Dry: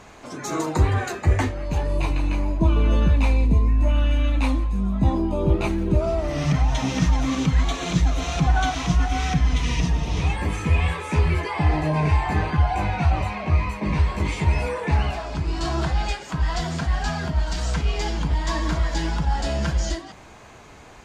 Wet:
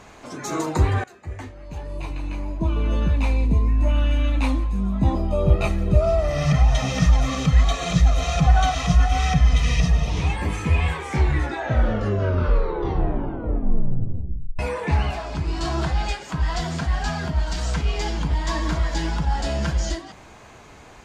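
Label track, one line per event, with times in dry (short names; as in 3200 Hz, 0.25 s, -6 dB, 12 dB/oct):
1.040000	3.880000	fade in, from -20 dB
5.150000	10.100000	comb 1.6 ms
10.810000	10.810000	tape stop 3.78 s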